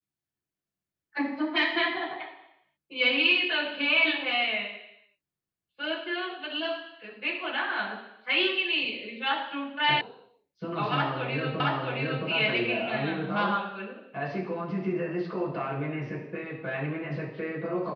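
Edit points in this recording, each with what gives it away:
0:10.01: cut off before it has died away
0:11.60: the same again, the last 0.67 s

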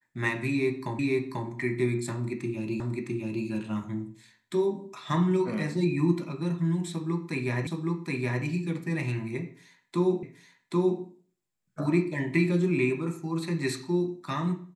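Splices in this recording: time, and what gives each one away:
0:00.99: the same again, the last 0.49 s
0:02.80: the same again, the last 0.66 s
0:07.67: the same again, the last 0.77 s
0:10.23: the same again, the last 0.78 s

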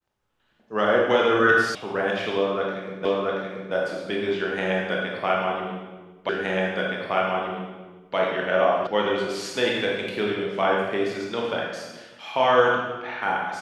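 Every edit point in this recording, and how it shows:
0:01.75: cut off before it has died away
0:03.05: the same again, the last 0.68 s
0:06.29: the same again, the last 1.87 s
0:08.87: cut off before it has died away

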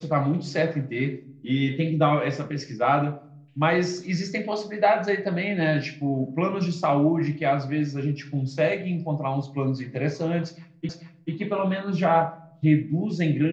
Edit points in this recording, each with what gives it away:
0:10.89: the same again, the last 0.44 s

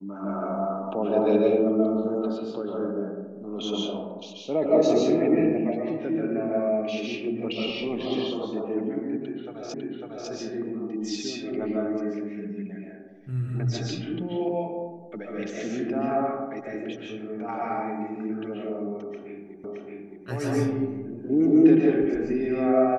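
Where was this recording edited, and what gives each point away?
0:09.74: the same again, the last 0.55 s
0:19.64: the same again, the last 0.62 s

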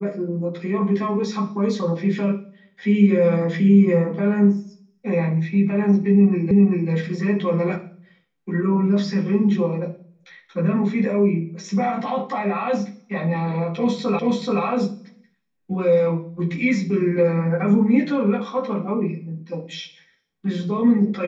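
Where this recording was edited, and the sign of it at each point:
0:06.51: the same again, the last 0.39 s
0:14.19: the same again, the last 0.43 s

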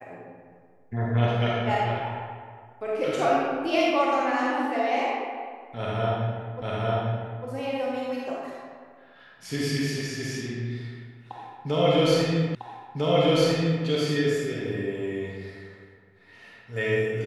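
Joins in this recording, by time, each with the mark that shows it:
0:06.62: the same again, the last 0.85 s
0:12.55: the same again, the last 1.3 s

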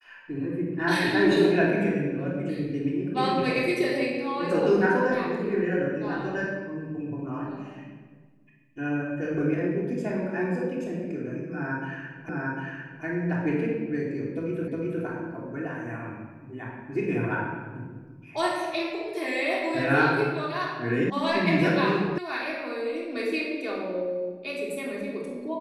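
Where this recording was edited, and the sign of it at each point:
0:12.29: the same again, the last 0.75 s
0:14.68: the same again, the last 0.36 s
0:21.10: cut off before it has died away
0:22.18: cut off before it has died away

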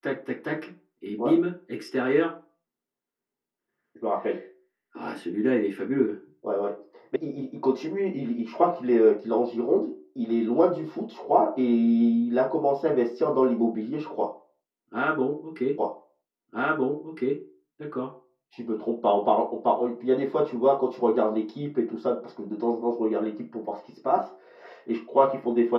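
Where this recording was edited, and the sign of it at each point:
0:07.16: cut off before it has died away
0:15.78: the same again, the last 1.61 s

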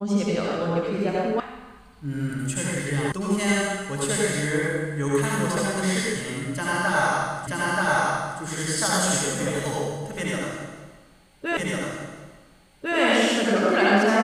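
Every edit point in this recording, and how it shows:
0:01.40: cut off before it has died away
0:03.12: cut off before it has died away
0:07.47: the same again, the last 0.93 s
0:11.57: the same again, the last 1.4 s

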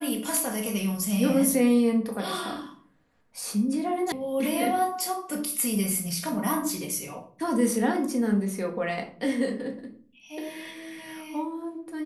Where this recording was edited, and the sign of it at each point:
0:04.12: cut off before it has died away

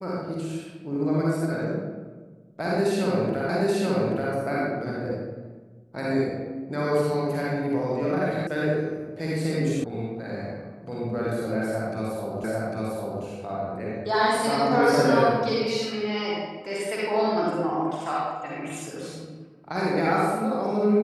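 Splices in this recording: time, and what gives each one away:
0:03.49: the same again, the last 0.83 s
0:08.47: cut off before it has died away
0:09.84: cut off before it has died away
0:12.44: the same again, the last 0.8 s

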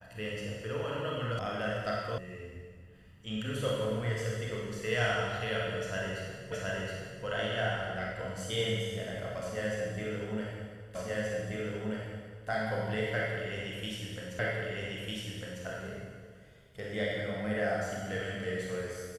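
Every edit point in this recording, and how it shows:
0:01.39: cut off before it has died away
0:02.18: cut off before it has died away
0:06.52: the same again, the last 0.72 s
0:10.95: the same again, the last 1.53 s
0:14.39: the same again, the last 1.25 s

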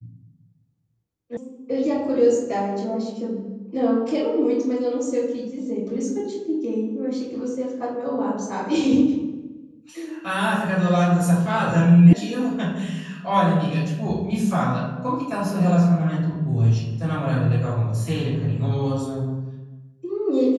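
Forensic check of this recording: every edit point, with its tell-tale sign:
0:01.37: cut off before it has died away
0:12.13: cut off before it has died away

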